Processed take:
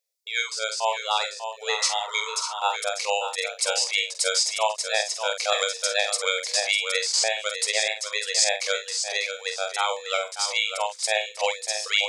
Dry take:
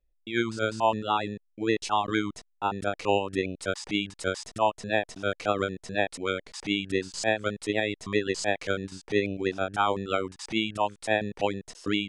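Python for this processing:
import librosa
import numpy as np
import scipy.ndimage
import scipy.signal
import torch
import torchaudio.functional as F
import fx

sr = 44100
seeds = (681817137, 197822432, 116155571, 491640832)

y = fx.peak_eq(x, sr, hz=2200.0, db=12.0, octaves=0.3)
y = fx.rider(y, sr, range_db=10, speed_s=0.5)
y = fx.brickwall_highpass(y, sr, low_hz=440.0)
y = fx.high_shelf_res(y, sr, hz=3300.0, db=13.0, q=1.5)
y = fx.doubler(y, sr, ms=47.0, db=-7.5)
y = y + 10.0 ** (-8.5 / 20.0) * np.pad(y, (int(595 * sr / 1000.0), 0))[:len(y)]
y = fx.spec_repair(y, sr, seeds[0], start_s=1.8, length_s=0.77, low_hz=920.0, high_hz=2100.0, source='both')
y = fx.band_squash(y, sr, depth_pct=100, at=(5.52, 7.78))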